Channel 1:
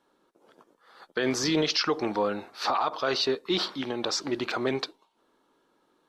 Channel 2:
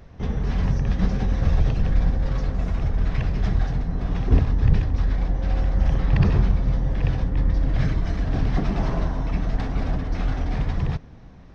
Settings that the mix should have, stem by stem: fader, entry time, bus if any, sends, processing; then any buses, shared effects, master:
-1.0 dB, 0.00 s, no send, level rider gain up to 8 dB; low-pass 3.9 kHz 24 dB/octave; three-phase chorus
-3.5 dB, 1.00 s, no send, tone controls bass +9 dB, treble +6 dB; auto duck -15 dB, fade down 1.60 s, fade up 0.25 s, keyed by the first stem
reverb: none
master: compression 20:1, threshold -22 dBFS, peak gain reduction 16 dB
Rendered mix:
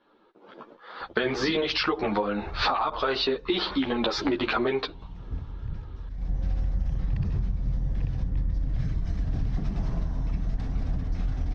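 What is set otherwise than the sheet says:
stem 1 -1.0 dB -> +8.5 dB; stem 2 -3.5 dB -> -10.5 dB

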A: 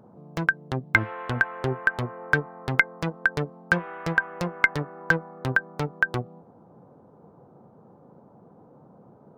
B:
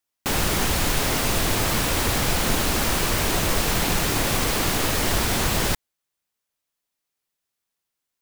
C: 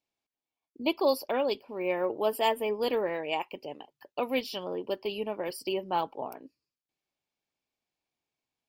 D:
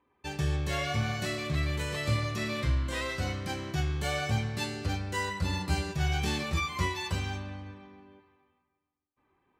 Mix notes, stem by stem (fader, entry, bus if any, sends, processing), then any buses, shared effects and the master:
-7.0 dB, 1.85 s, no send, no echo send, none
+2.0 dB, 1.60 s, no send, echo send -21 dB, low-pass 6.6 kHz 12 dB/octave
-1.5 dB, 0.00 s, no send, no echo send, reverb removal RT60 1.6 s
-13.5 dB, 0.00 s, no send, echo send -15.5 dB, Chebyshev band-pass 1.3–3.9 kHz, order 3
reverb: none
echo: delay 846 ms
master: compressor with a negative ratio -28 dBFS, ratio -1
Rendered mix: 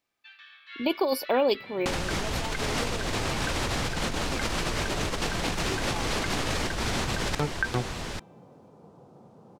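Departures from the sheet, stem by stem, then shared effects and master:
stem A: entry 1.85 s -> 1.60 s; stem C: missing reverb removal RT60 1.6 s

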